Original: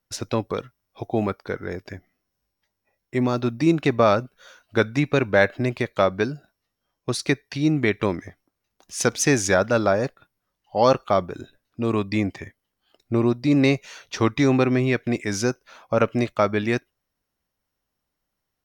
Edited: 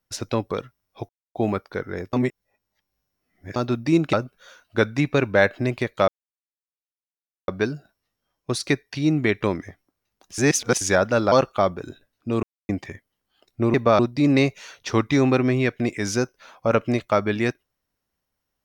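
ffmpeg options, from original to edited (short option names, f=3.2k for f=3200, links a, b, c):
-filter_complex "[0:a]asplit=13[a][b][c][d][e][f][g][h][i][j][k][l][m];[a]atrim=end=1.09,asetpts=PTS-STARTPTS,afade=t=out:st=1.086:d=0.004:c=hsin,apad=pad_dur=0.26[n];[b]atrim=start=1.09:end=1.872,asetpts=PTS-STARTPTS,afade=t=in:d=0.004:c=hsin[o];[c]atrim=start=1.868:end=3.302,asetpts=PTS-STARTPTS,areverse[p];[d]atrim=start=3.298:end=3.872[q];[e]atrim=start=4.118:end=6.07,asetpts=PTS-STARTPTS,afade=t=out:st=1.948:d=0.004:c=hsin,apad=pad_dur=1.4[r];[f]atrim=start=6.07:end=8.972,asetpts=PTS-STARTPTS,afade=t=in:d=0.004:c=hsin[s];[g]atrim=start=8.968:end=9.402,asetpts=PTS-STARTPTS,areverse[t];[h]atrim=start=9.398:end=9.912[u];[i]atrim=start=10.838:end=11.95,asetpts=PTS-STARTPTS,afade=t=out:st=1.108:d=0.004:c=hsin[v];[j]atrim=start=11.95:end=12.21,asetpts=PTS-STARTPTS,volume=0[w];[k]atrim=start=12.21:end=13.262,asetpts=PTS-STARTPTS,afade=t=in:d=0.004:c=hsin[x];[l]atrim=start=3.868:end=4.122[y];[m]atrim=start=13.258[z];[n][o]concat=n=2:v=0:a=1[aa];[aa][p]acrossfade=d=0.004:c1=hsin:c2=hsin[ab];[ab][q]acrossfade=d=0.004:c1=hsin:c2=hsin[ac];[r][s]concat=n=2:v=0:a=1[ad];[ac][ad]acrossfade=d=0.004:c1=hsin:c2=hsin[ae];[ae][t]acrossfade=d=0.004:c1=hsin:c2=hsin[af];[af][u]acrossfade=d=0.004:c1=hsin:c2=hsin[ag];[v][w][x]concat=n=3:v=0:a=1[ah];[ag][ah]acrossfade=d=0.004:c1=hsin:c2=hsin[ai];[ai][y]acrossfade=d=0.004:c1=hsin:c2=hsin[aj];[aj][z]acrossfade=d=0.004:c1=hsin:c2=hsin"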